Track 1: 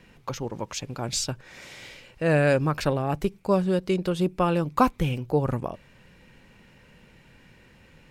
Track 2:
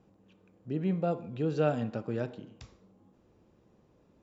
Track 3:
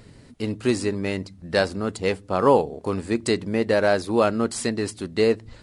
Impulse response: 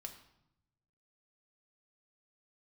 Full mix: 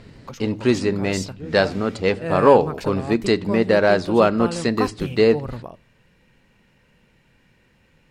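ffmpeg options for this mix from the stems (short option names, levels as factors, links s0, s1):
-filter_complex "[0:a]volume=0.531,asplit=2[s0][s1];[s1]volume=0.15[s2];[1:a]volume=0.531[s3];[2:a]lowpass=5100,volume=1.26,asplit=2[s4][s5];[s5]volume=0.398[s6];[3:a]atrim=start_sample=2205[s7];[s2][s6]amix=inputs=2:normalize=0[s8];[s8][s7]afir=irnorm=-1:irlink=0[s9];[s0][s3][s4][s9]amix=inputs=4:normalize=0"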